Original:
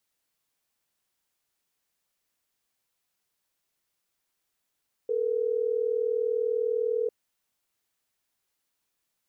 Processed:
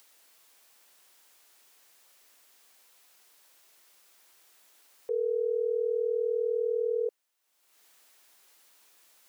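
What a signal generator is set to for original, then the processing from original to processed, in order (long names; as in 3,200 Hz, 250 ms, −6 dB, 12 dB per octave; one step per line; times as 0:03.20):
call progress tone ringback tone, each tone −27 dBFS
high-pass filter 370 Hz 12 dB per octave
upward compression, threshold −45 dBFS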